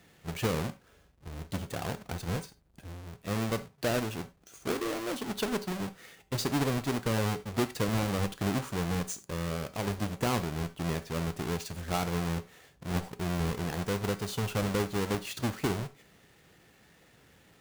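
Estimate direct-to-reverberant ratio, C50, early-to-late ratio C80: 11.0 dB, 16.0 dB, 22.5 dB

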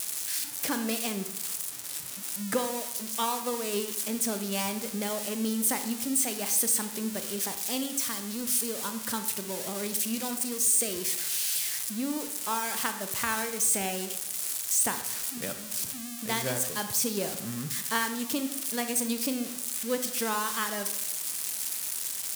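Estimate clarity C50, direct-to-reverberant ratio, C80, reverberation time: 9.5 dB, 7.5 dB, 12.0 dB, 0.90 s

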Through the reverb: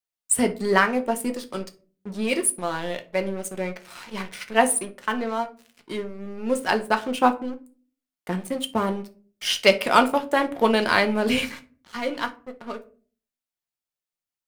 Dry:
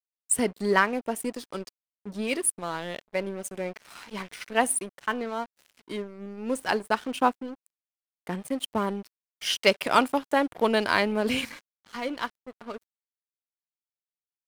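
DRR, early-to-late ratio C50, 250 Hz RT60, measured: 6.0 dB, 16.0 dB, 0.65 s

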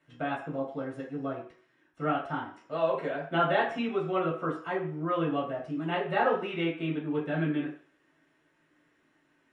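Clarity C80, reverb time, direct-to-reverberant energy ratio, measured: 11.0 dB, 0.50 s, −5.0 dB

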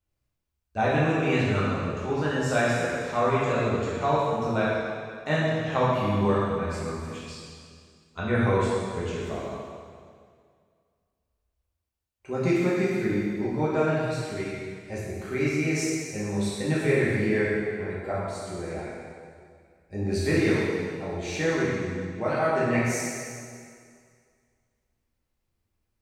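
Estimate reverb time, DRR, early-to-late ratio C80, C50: 2.1 s, −8.5 dB, 0.0 dB, −2.0 dB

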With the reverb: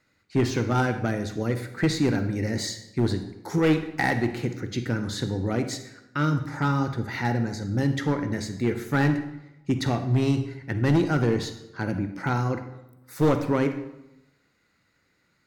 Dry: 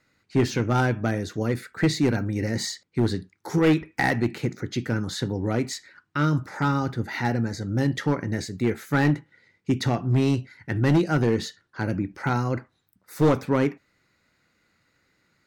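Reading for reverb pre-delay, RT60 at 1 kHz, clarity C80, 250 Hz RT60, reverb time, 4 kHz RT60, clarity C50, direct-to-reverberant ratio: 39 ms, 0.90 s, 12.0 dB, 1.1 s, 0.90 s, 0.70 s, 9.5 dB, 9.0 dB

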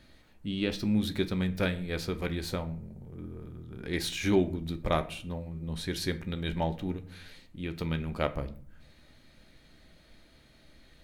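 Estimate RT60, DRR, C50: 0.55 s, 8.5 dB, 16.0 dB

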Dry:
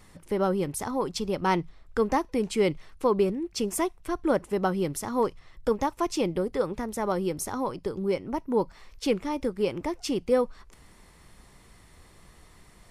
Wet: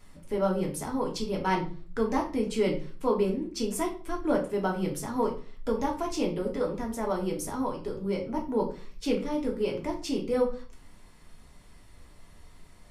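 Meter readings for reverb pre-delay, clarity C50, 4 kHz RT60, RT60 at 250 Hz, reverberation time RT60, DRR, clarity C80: 3 ms, 10.0 dB, 0.35 s, 0.65 s, 0.40 s, −0.5 dB, 14.0 dB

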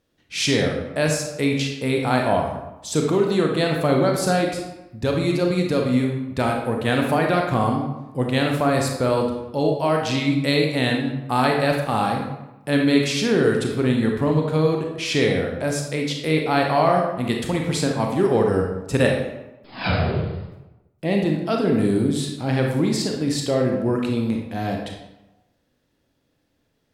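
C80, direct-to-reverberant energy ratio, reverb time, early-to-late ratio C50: 6.5 dB, 0.5 dB, 1.0 s, 3.0 dB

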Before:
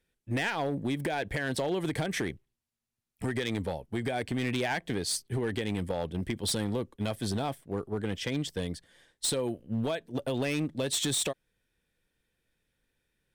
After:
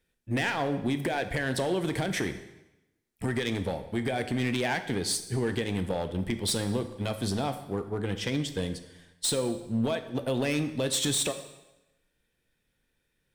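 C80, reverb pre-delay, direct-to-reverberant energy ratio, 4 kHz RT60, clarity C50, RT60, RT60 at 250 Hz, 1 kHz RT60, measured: 13.0 dB, 5 ms, 8.5 dB, 0.90 s, 11.0 dB, 0.95 s, 0.95 s, 0.95 s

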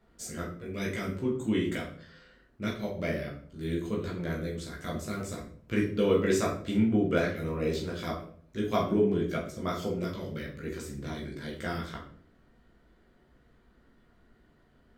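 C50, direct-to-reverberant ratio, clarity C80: 6.5 dB, −4.0 dB, 10.5 dB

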